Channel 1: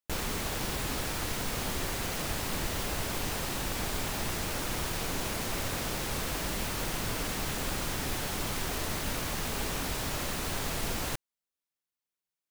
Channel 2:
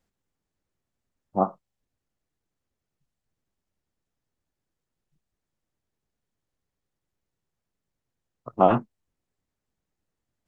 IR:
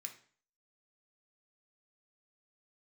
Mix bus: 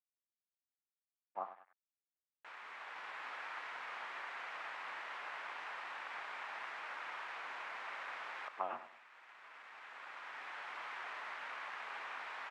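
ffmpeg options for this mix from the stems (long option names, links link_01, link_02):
-filter_complex "[0:a]adelay=2350,volume=-4dB,asplit=2[link_01][link_02];[link_02]volume=-13.5dB[link_03];[1:a]acrossover=split=370|3000[link_04][link_05][link_06];[link_05]acompressor=threshold=-28dB:ratio=6[link_07];[link_04][link_07][link_06]amix=inputs=3:normalize=0,volume=-5.5dB,asplit=3[link_08][link_09][link_10];[link_09]volume=-12dB[link_11];[link_10]apad=whole_len=655115[link_12];[link_01][link_12]sidechaincompress=threshold=-43dB:ratio=5:attack=6.8:release=1450[link_13];[2:a]atrim=start_sample=2205[link_14];[link_03][link_14]afir=irnorm=-1:irlink=0[link_15];[link_11]aecho=0:1:98|196|294|392|490|588:1|0.4|0.16|0.064|0.0256|0.0102[link_16];[link_13][link_08][link_15][link_16]amix=inputs=4:normalize=0,aeval=exprs='sgn(val(0))*max(abs(val(0))-0.00188,0)':channel_layout=same,asuperpass=centerf=1400:order=4:qfactor=0.98"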